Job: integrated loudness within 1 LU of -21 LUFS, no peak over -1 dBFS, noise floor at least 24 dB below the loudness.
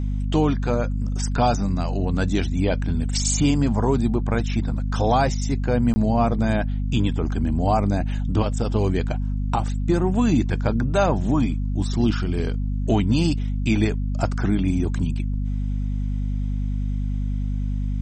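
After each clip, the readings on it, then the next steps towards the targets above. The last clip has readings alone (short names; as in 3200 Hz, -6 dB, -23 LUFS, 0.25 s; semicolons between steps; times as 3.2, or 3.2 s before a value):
dropouts 1; longest dropout 20 ms; hum 50 Hz; harmonics up to 250 Hz; hum level -22 dBFS; loudness -23.0 LUFS; peak -7.5 dBFS; loudness target -21.0 LUFS
-> interpolate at 5.94, 20 ms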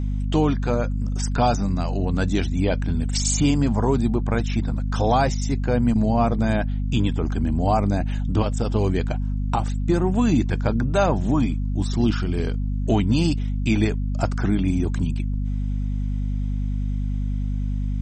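dropouts 0; hum 50 Hz; harmonics up to 250 Hz; hum level -22 dBFS
-> de-hum 50 Hz, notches 5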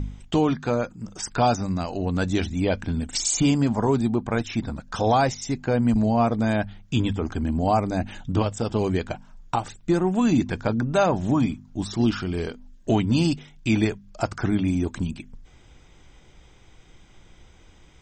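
hum none; loudness -24.5 LUFS; peak -9.0 dBFS; loudness target -21.0 LUFS
-> gain +3.5 dB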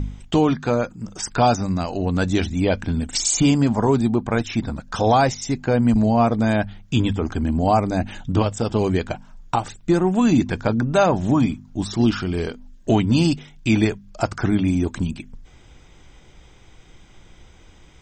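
loudness -21.0 LUFS; peak -5.5 dBFS; noise floor -49 dBFS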